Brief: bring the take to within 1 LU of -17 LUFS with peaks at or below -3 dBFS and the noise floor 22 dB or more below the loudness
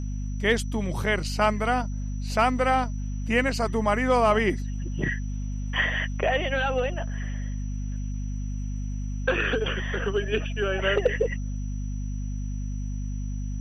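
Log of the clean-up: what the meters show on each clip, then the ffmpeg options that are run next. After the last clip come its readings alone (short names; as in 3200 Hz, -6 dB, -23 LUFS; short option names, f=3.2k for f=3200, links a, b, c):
hum 50 Hz; harmonics up to 250 Hz; hum level -28 dBFS; steady tone 5900 Hz; tone level -52 dBFS; loudness -27.0 LUFS; peak -9.5 dBFS; loudness target -17.0 LUFS
-> -af "bandreject=f=50:t=h:w=6,bandreject=f=100:t=h:w=6,bandreject=f=150:t=h:w=6,bandreject=f=200:t=h:w=6,bandreject=f=250:t=h:w=6"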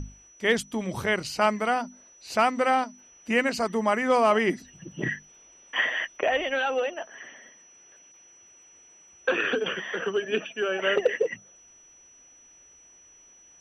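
hum none; steady tone 5900 Hz; tone level -52 dBFS
-> -af "bandreject=f=5.9k:w=30"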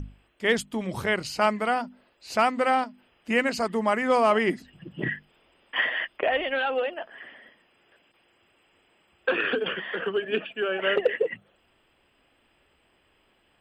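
steady tone none; loudness -26.0 LUFS; peak -11.0 dBFS; loudness target -17.0 LUFS
-> -af "volume=9dB,alimiter=limit=-3dB:level=0:latency=1"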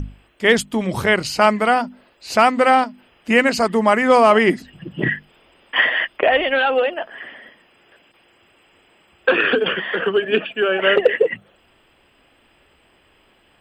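loudness -17.5 LUFS; peak -3.0 dBFS; noise floor -57 dBFS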